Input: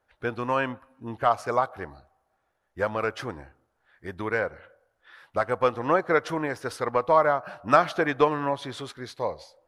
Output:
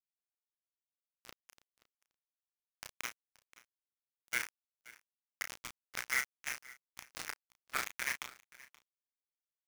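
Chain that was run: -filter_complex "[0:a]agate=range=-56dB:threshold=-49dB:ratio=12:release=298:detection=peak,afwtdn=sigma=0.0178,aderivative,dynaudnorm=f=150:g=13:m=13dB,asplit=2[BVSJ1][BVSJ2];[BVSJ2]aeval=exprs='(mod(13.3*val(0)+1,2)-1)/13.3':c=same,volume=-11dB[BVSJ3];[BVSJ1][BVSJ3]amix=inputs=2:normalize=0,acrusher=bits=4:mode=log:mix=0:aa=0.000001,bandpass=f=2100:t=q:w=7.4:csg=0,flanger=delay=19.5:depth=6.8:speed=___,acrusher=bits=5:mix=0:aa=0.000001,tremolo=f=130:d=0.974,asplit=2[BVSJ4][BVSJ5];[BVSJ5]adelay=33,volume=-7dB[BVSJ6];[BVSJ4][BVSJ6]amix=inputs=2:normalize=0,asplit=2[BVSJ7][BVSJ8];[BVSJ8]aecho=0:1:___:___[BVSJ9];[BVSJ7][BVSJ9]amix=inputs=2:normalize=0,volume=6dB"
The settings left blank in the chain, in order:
0.53, 527, 0.0944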